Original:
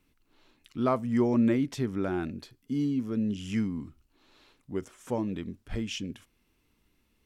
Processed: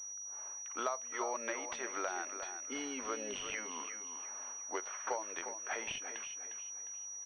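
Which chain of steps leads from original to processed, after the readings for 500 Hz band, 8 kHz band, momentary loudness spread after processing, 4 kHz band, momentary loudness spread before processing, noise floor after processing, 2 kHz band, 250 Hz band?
−9.0 dB, +15.5 dB, 5 LU, −3.0 dB, 14 LU, −46 dBFS, +2.5 dB, −21.5 dB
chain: low-pass that shuts in the quiet parts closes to 1,200 Hz, open at −26 dBFS
high-pass filter 640 Hz 24 dB per octave
downward compressor 8 to 1, threshold −51 dBFS, peak gain reduction 25.5 dB
repeating echo 355 ms, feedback 33%, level −9 dB
switching amplifier with a slow clock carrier 5,800 Hz
level +15.5 dB

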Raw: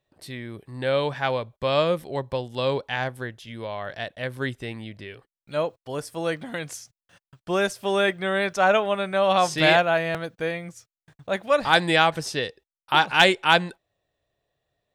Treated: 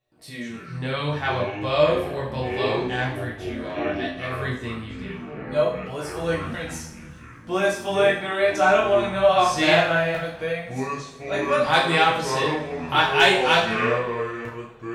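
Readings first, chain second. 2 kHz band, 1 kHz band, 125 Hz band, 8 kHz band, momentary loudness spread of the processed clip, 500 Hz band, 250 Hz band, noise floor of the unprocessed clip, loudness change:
+1.5 dB, +1.5 dB, +3.0 dB, +1.0 dB, 16 LU, +2.5 dB, +2.5 dB, below −85 dBFS, +1.0 dB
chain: chorus effect 0.66 Hz, delay 16 ms, depth 7.8 ms
delay with pitch and tempo change per echo 102 ms, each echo −6 semitones, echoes 3, each echo −6 dB
coupled-rooms reverb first 0.52 s, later 2.5 s, from −22 dB, DRR −3.5 dB
level −1 dB

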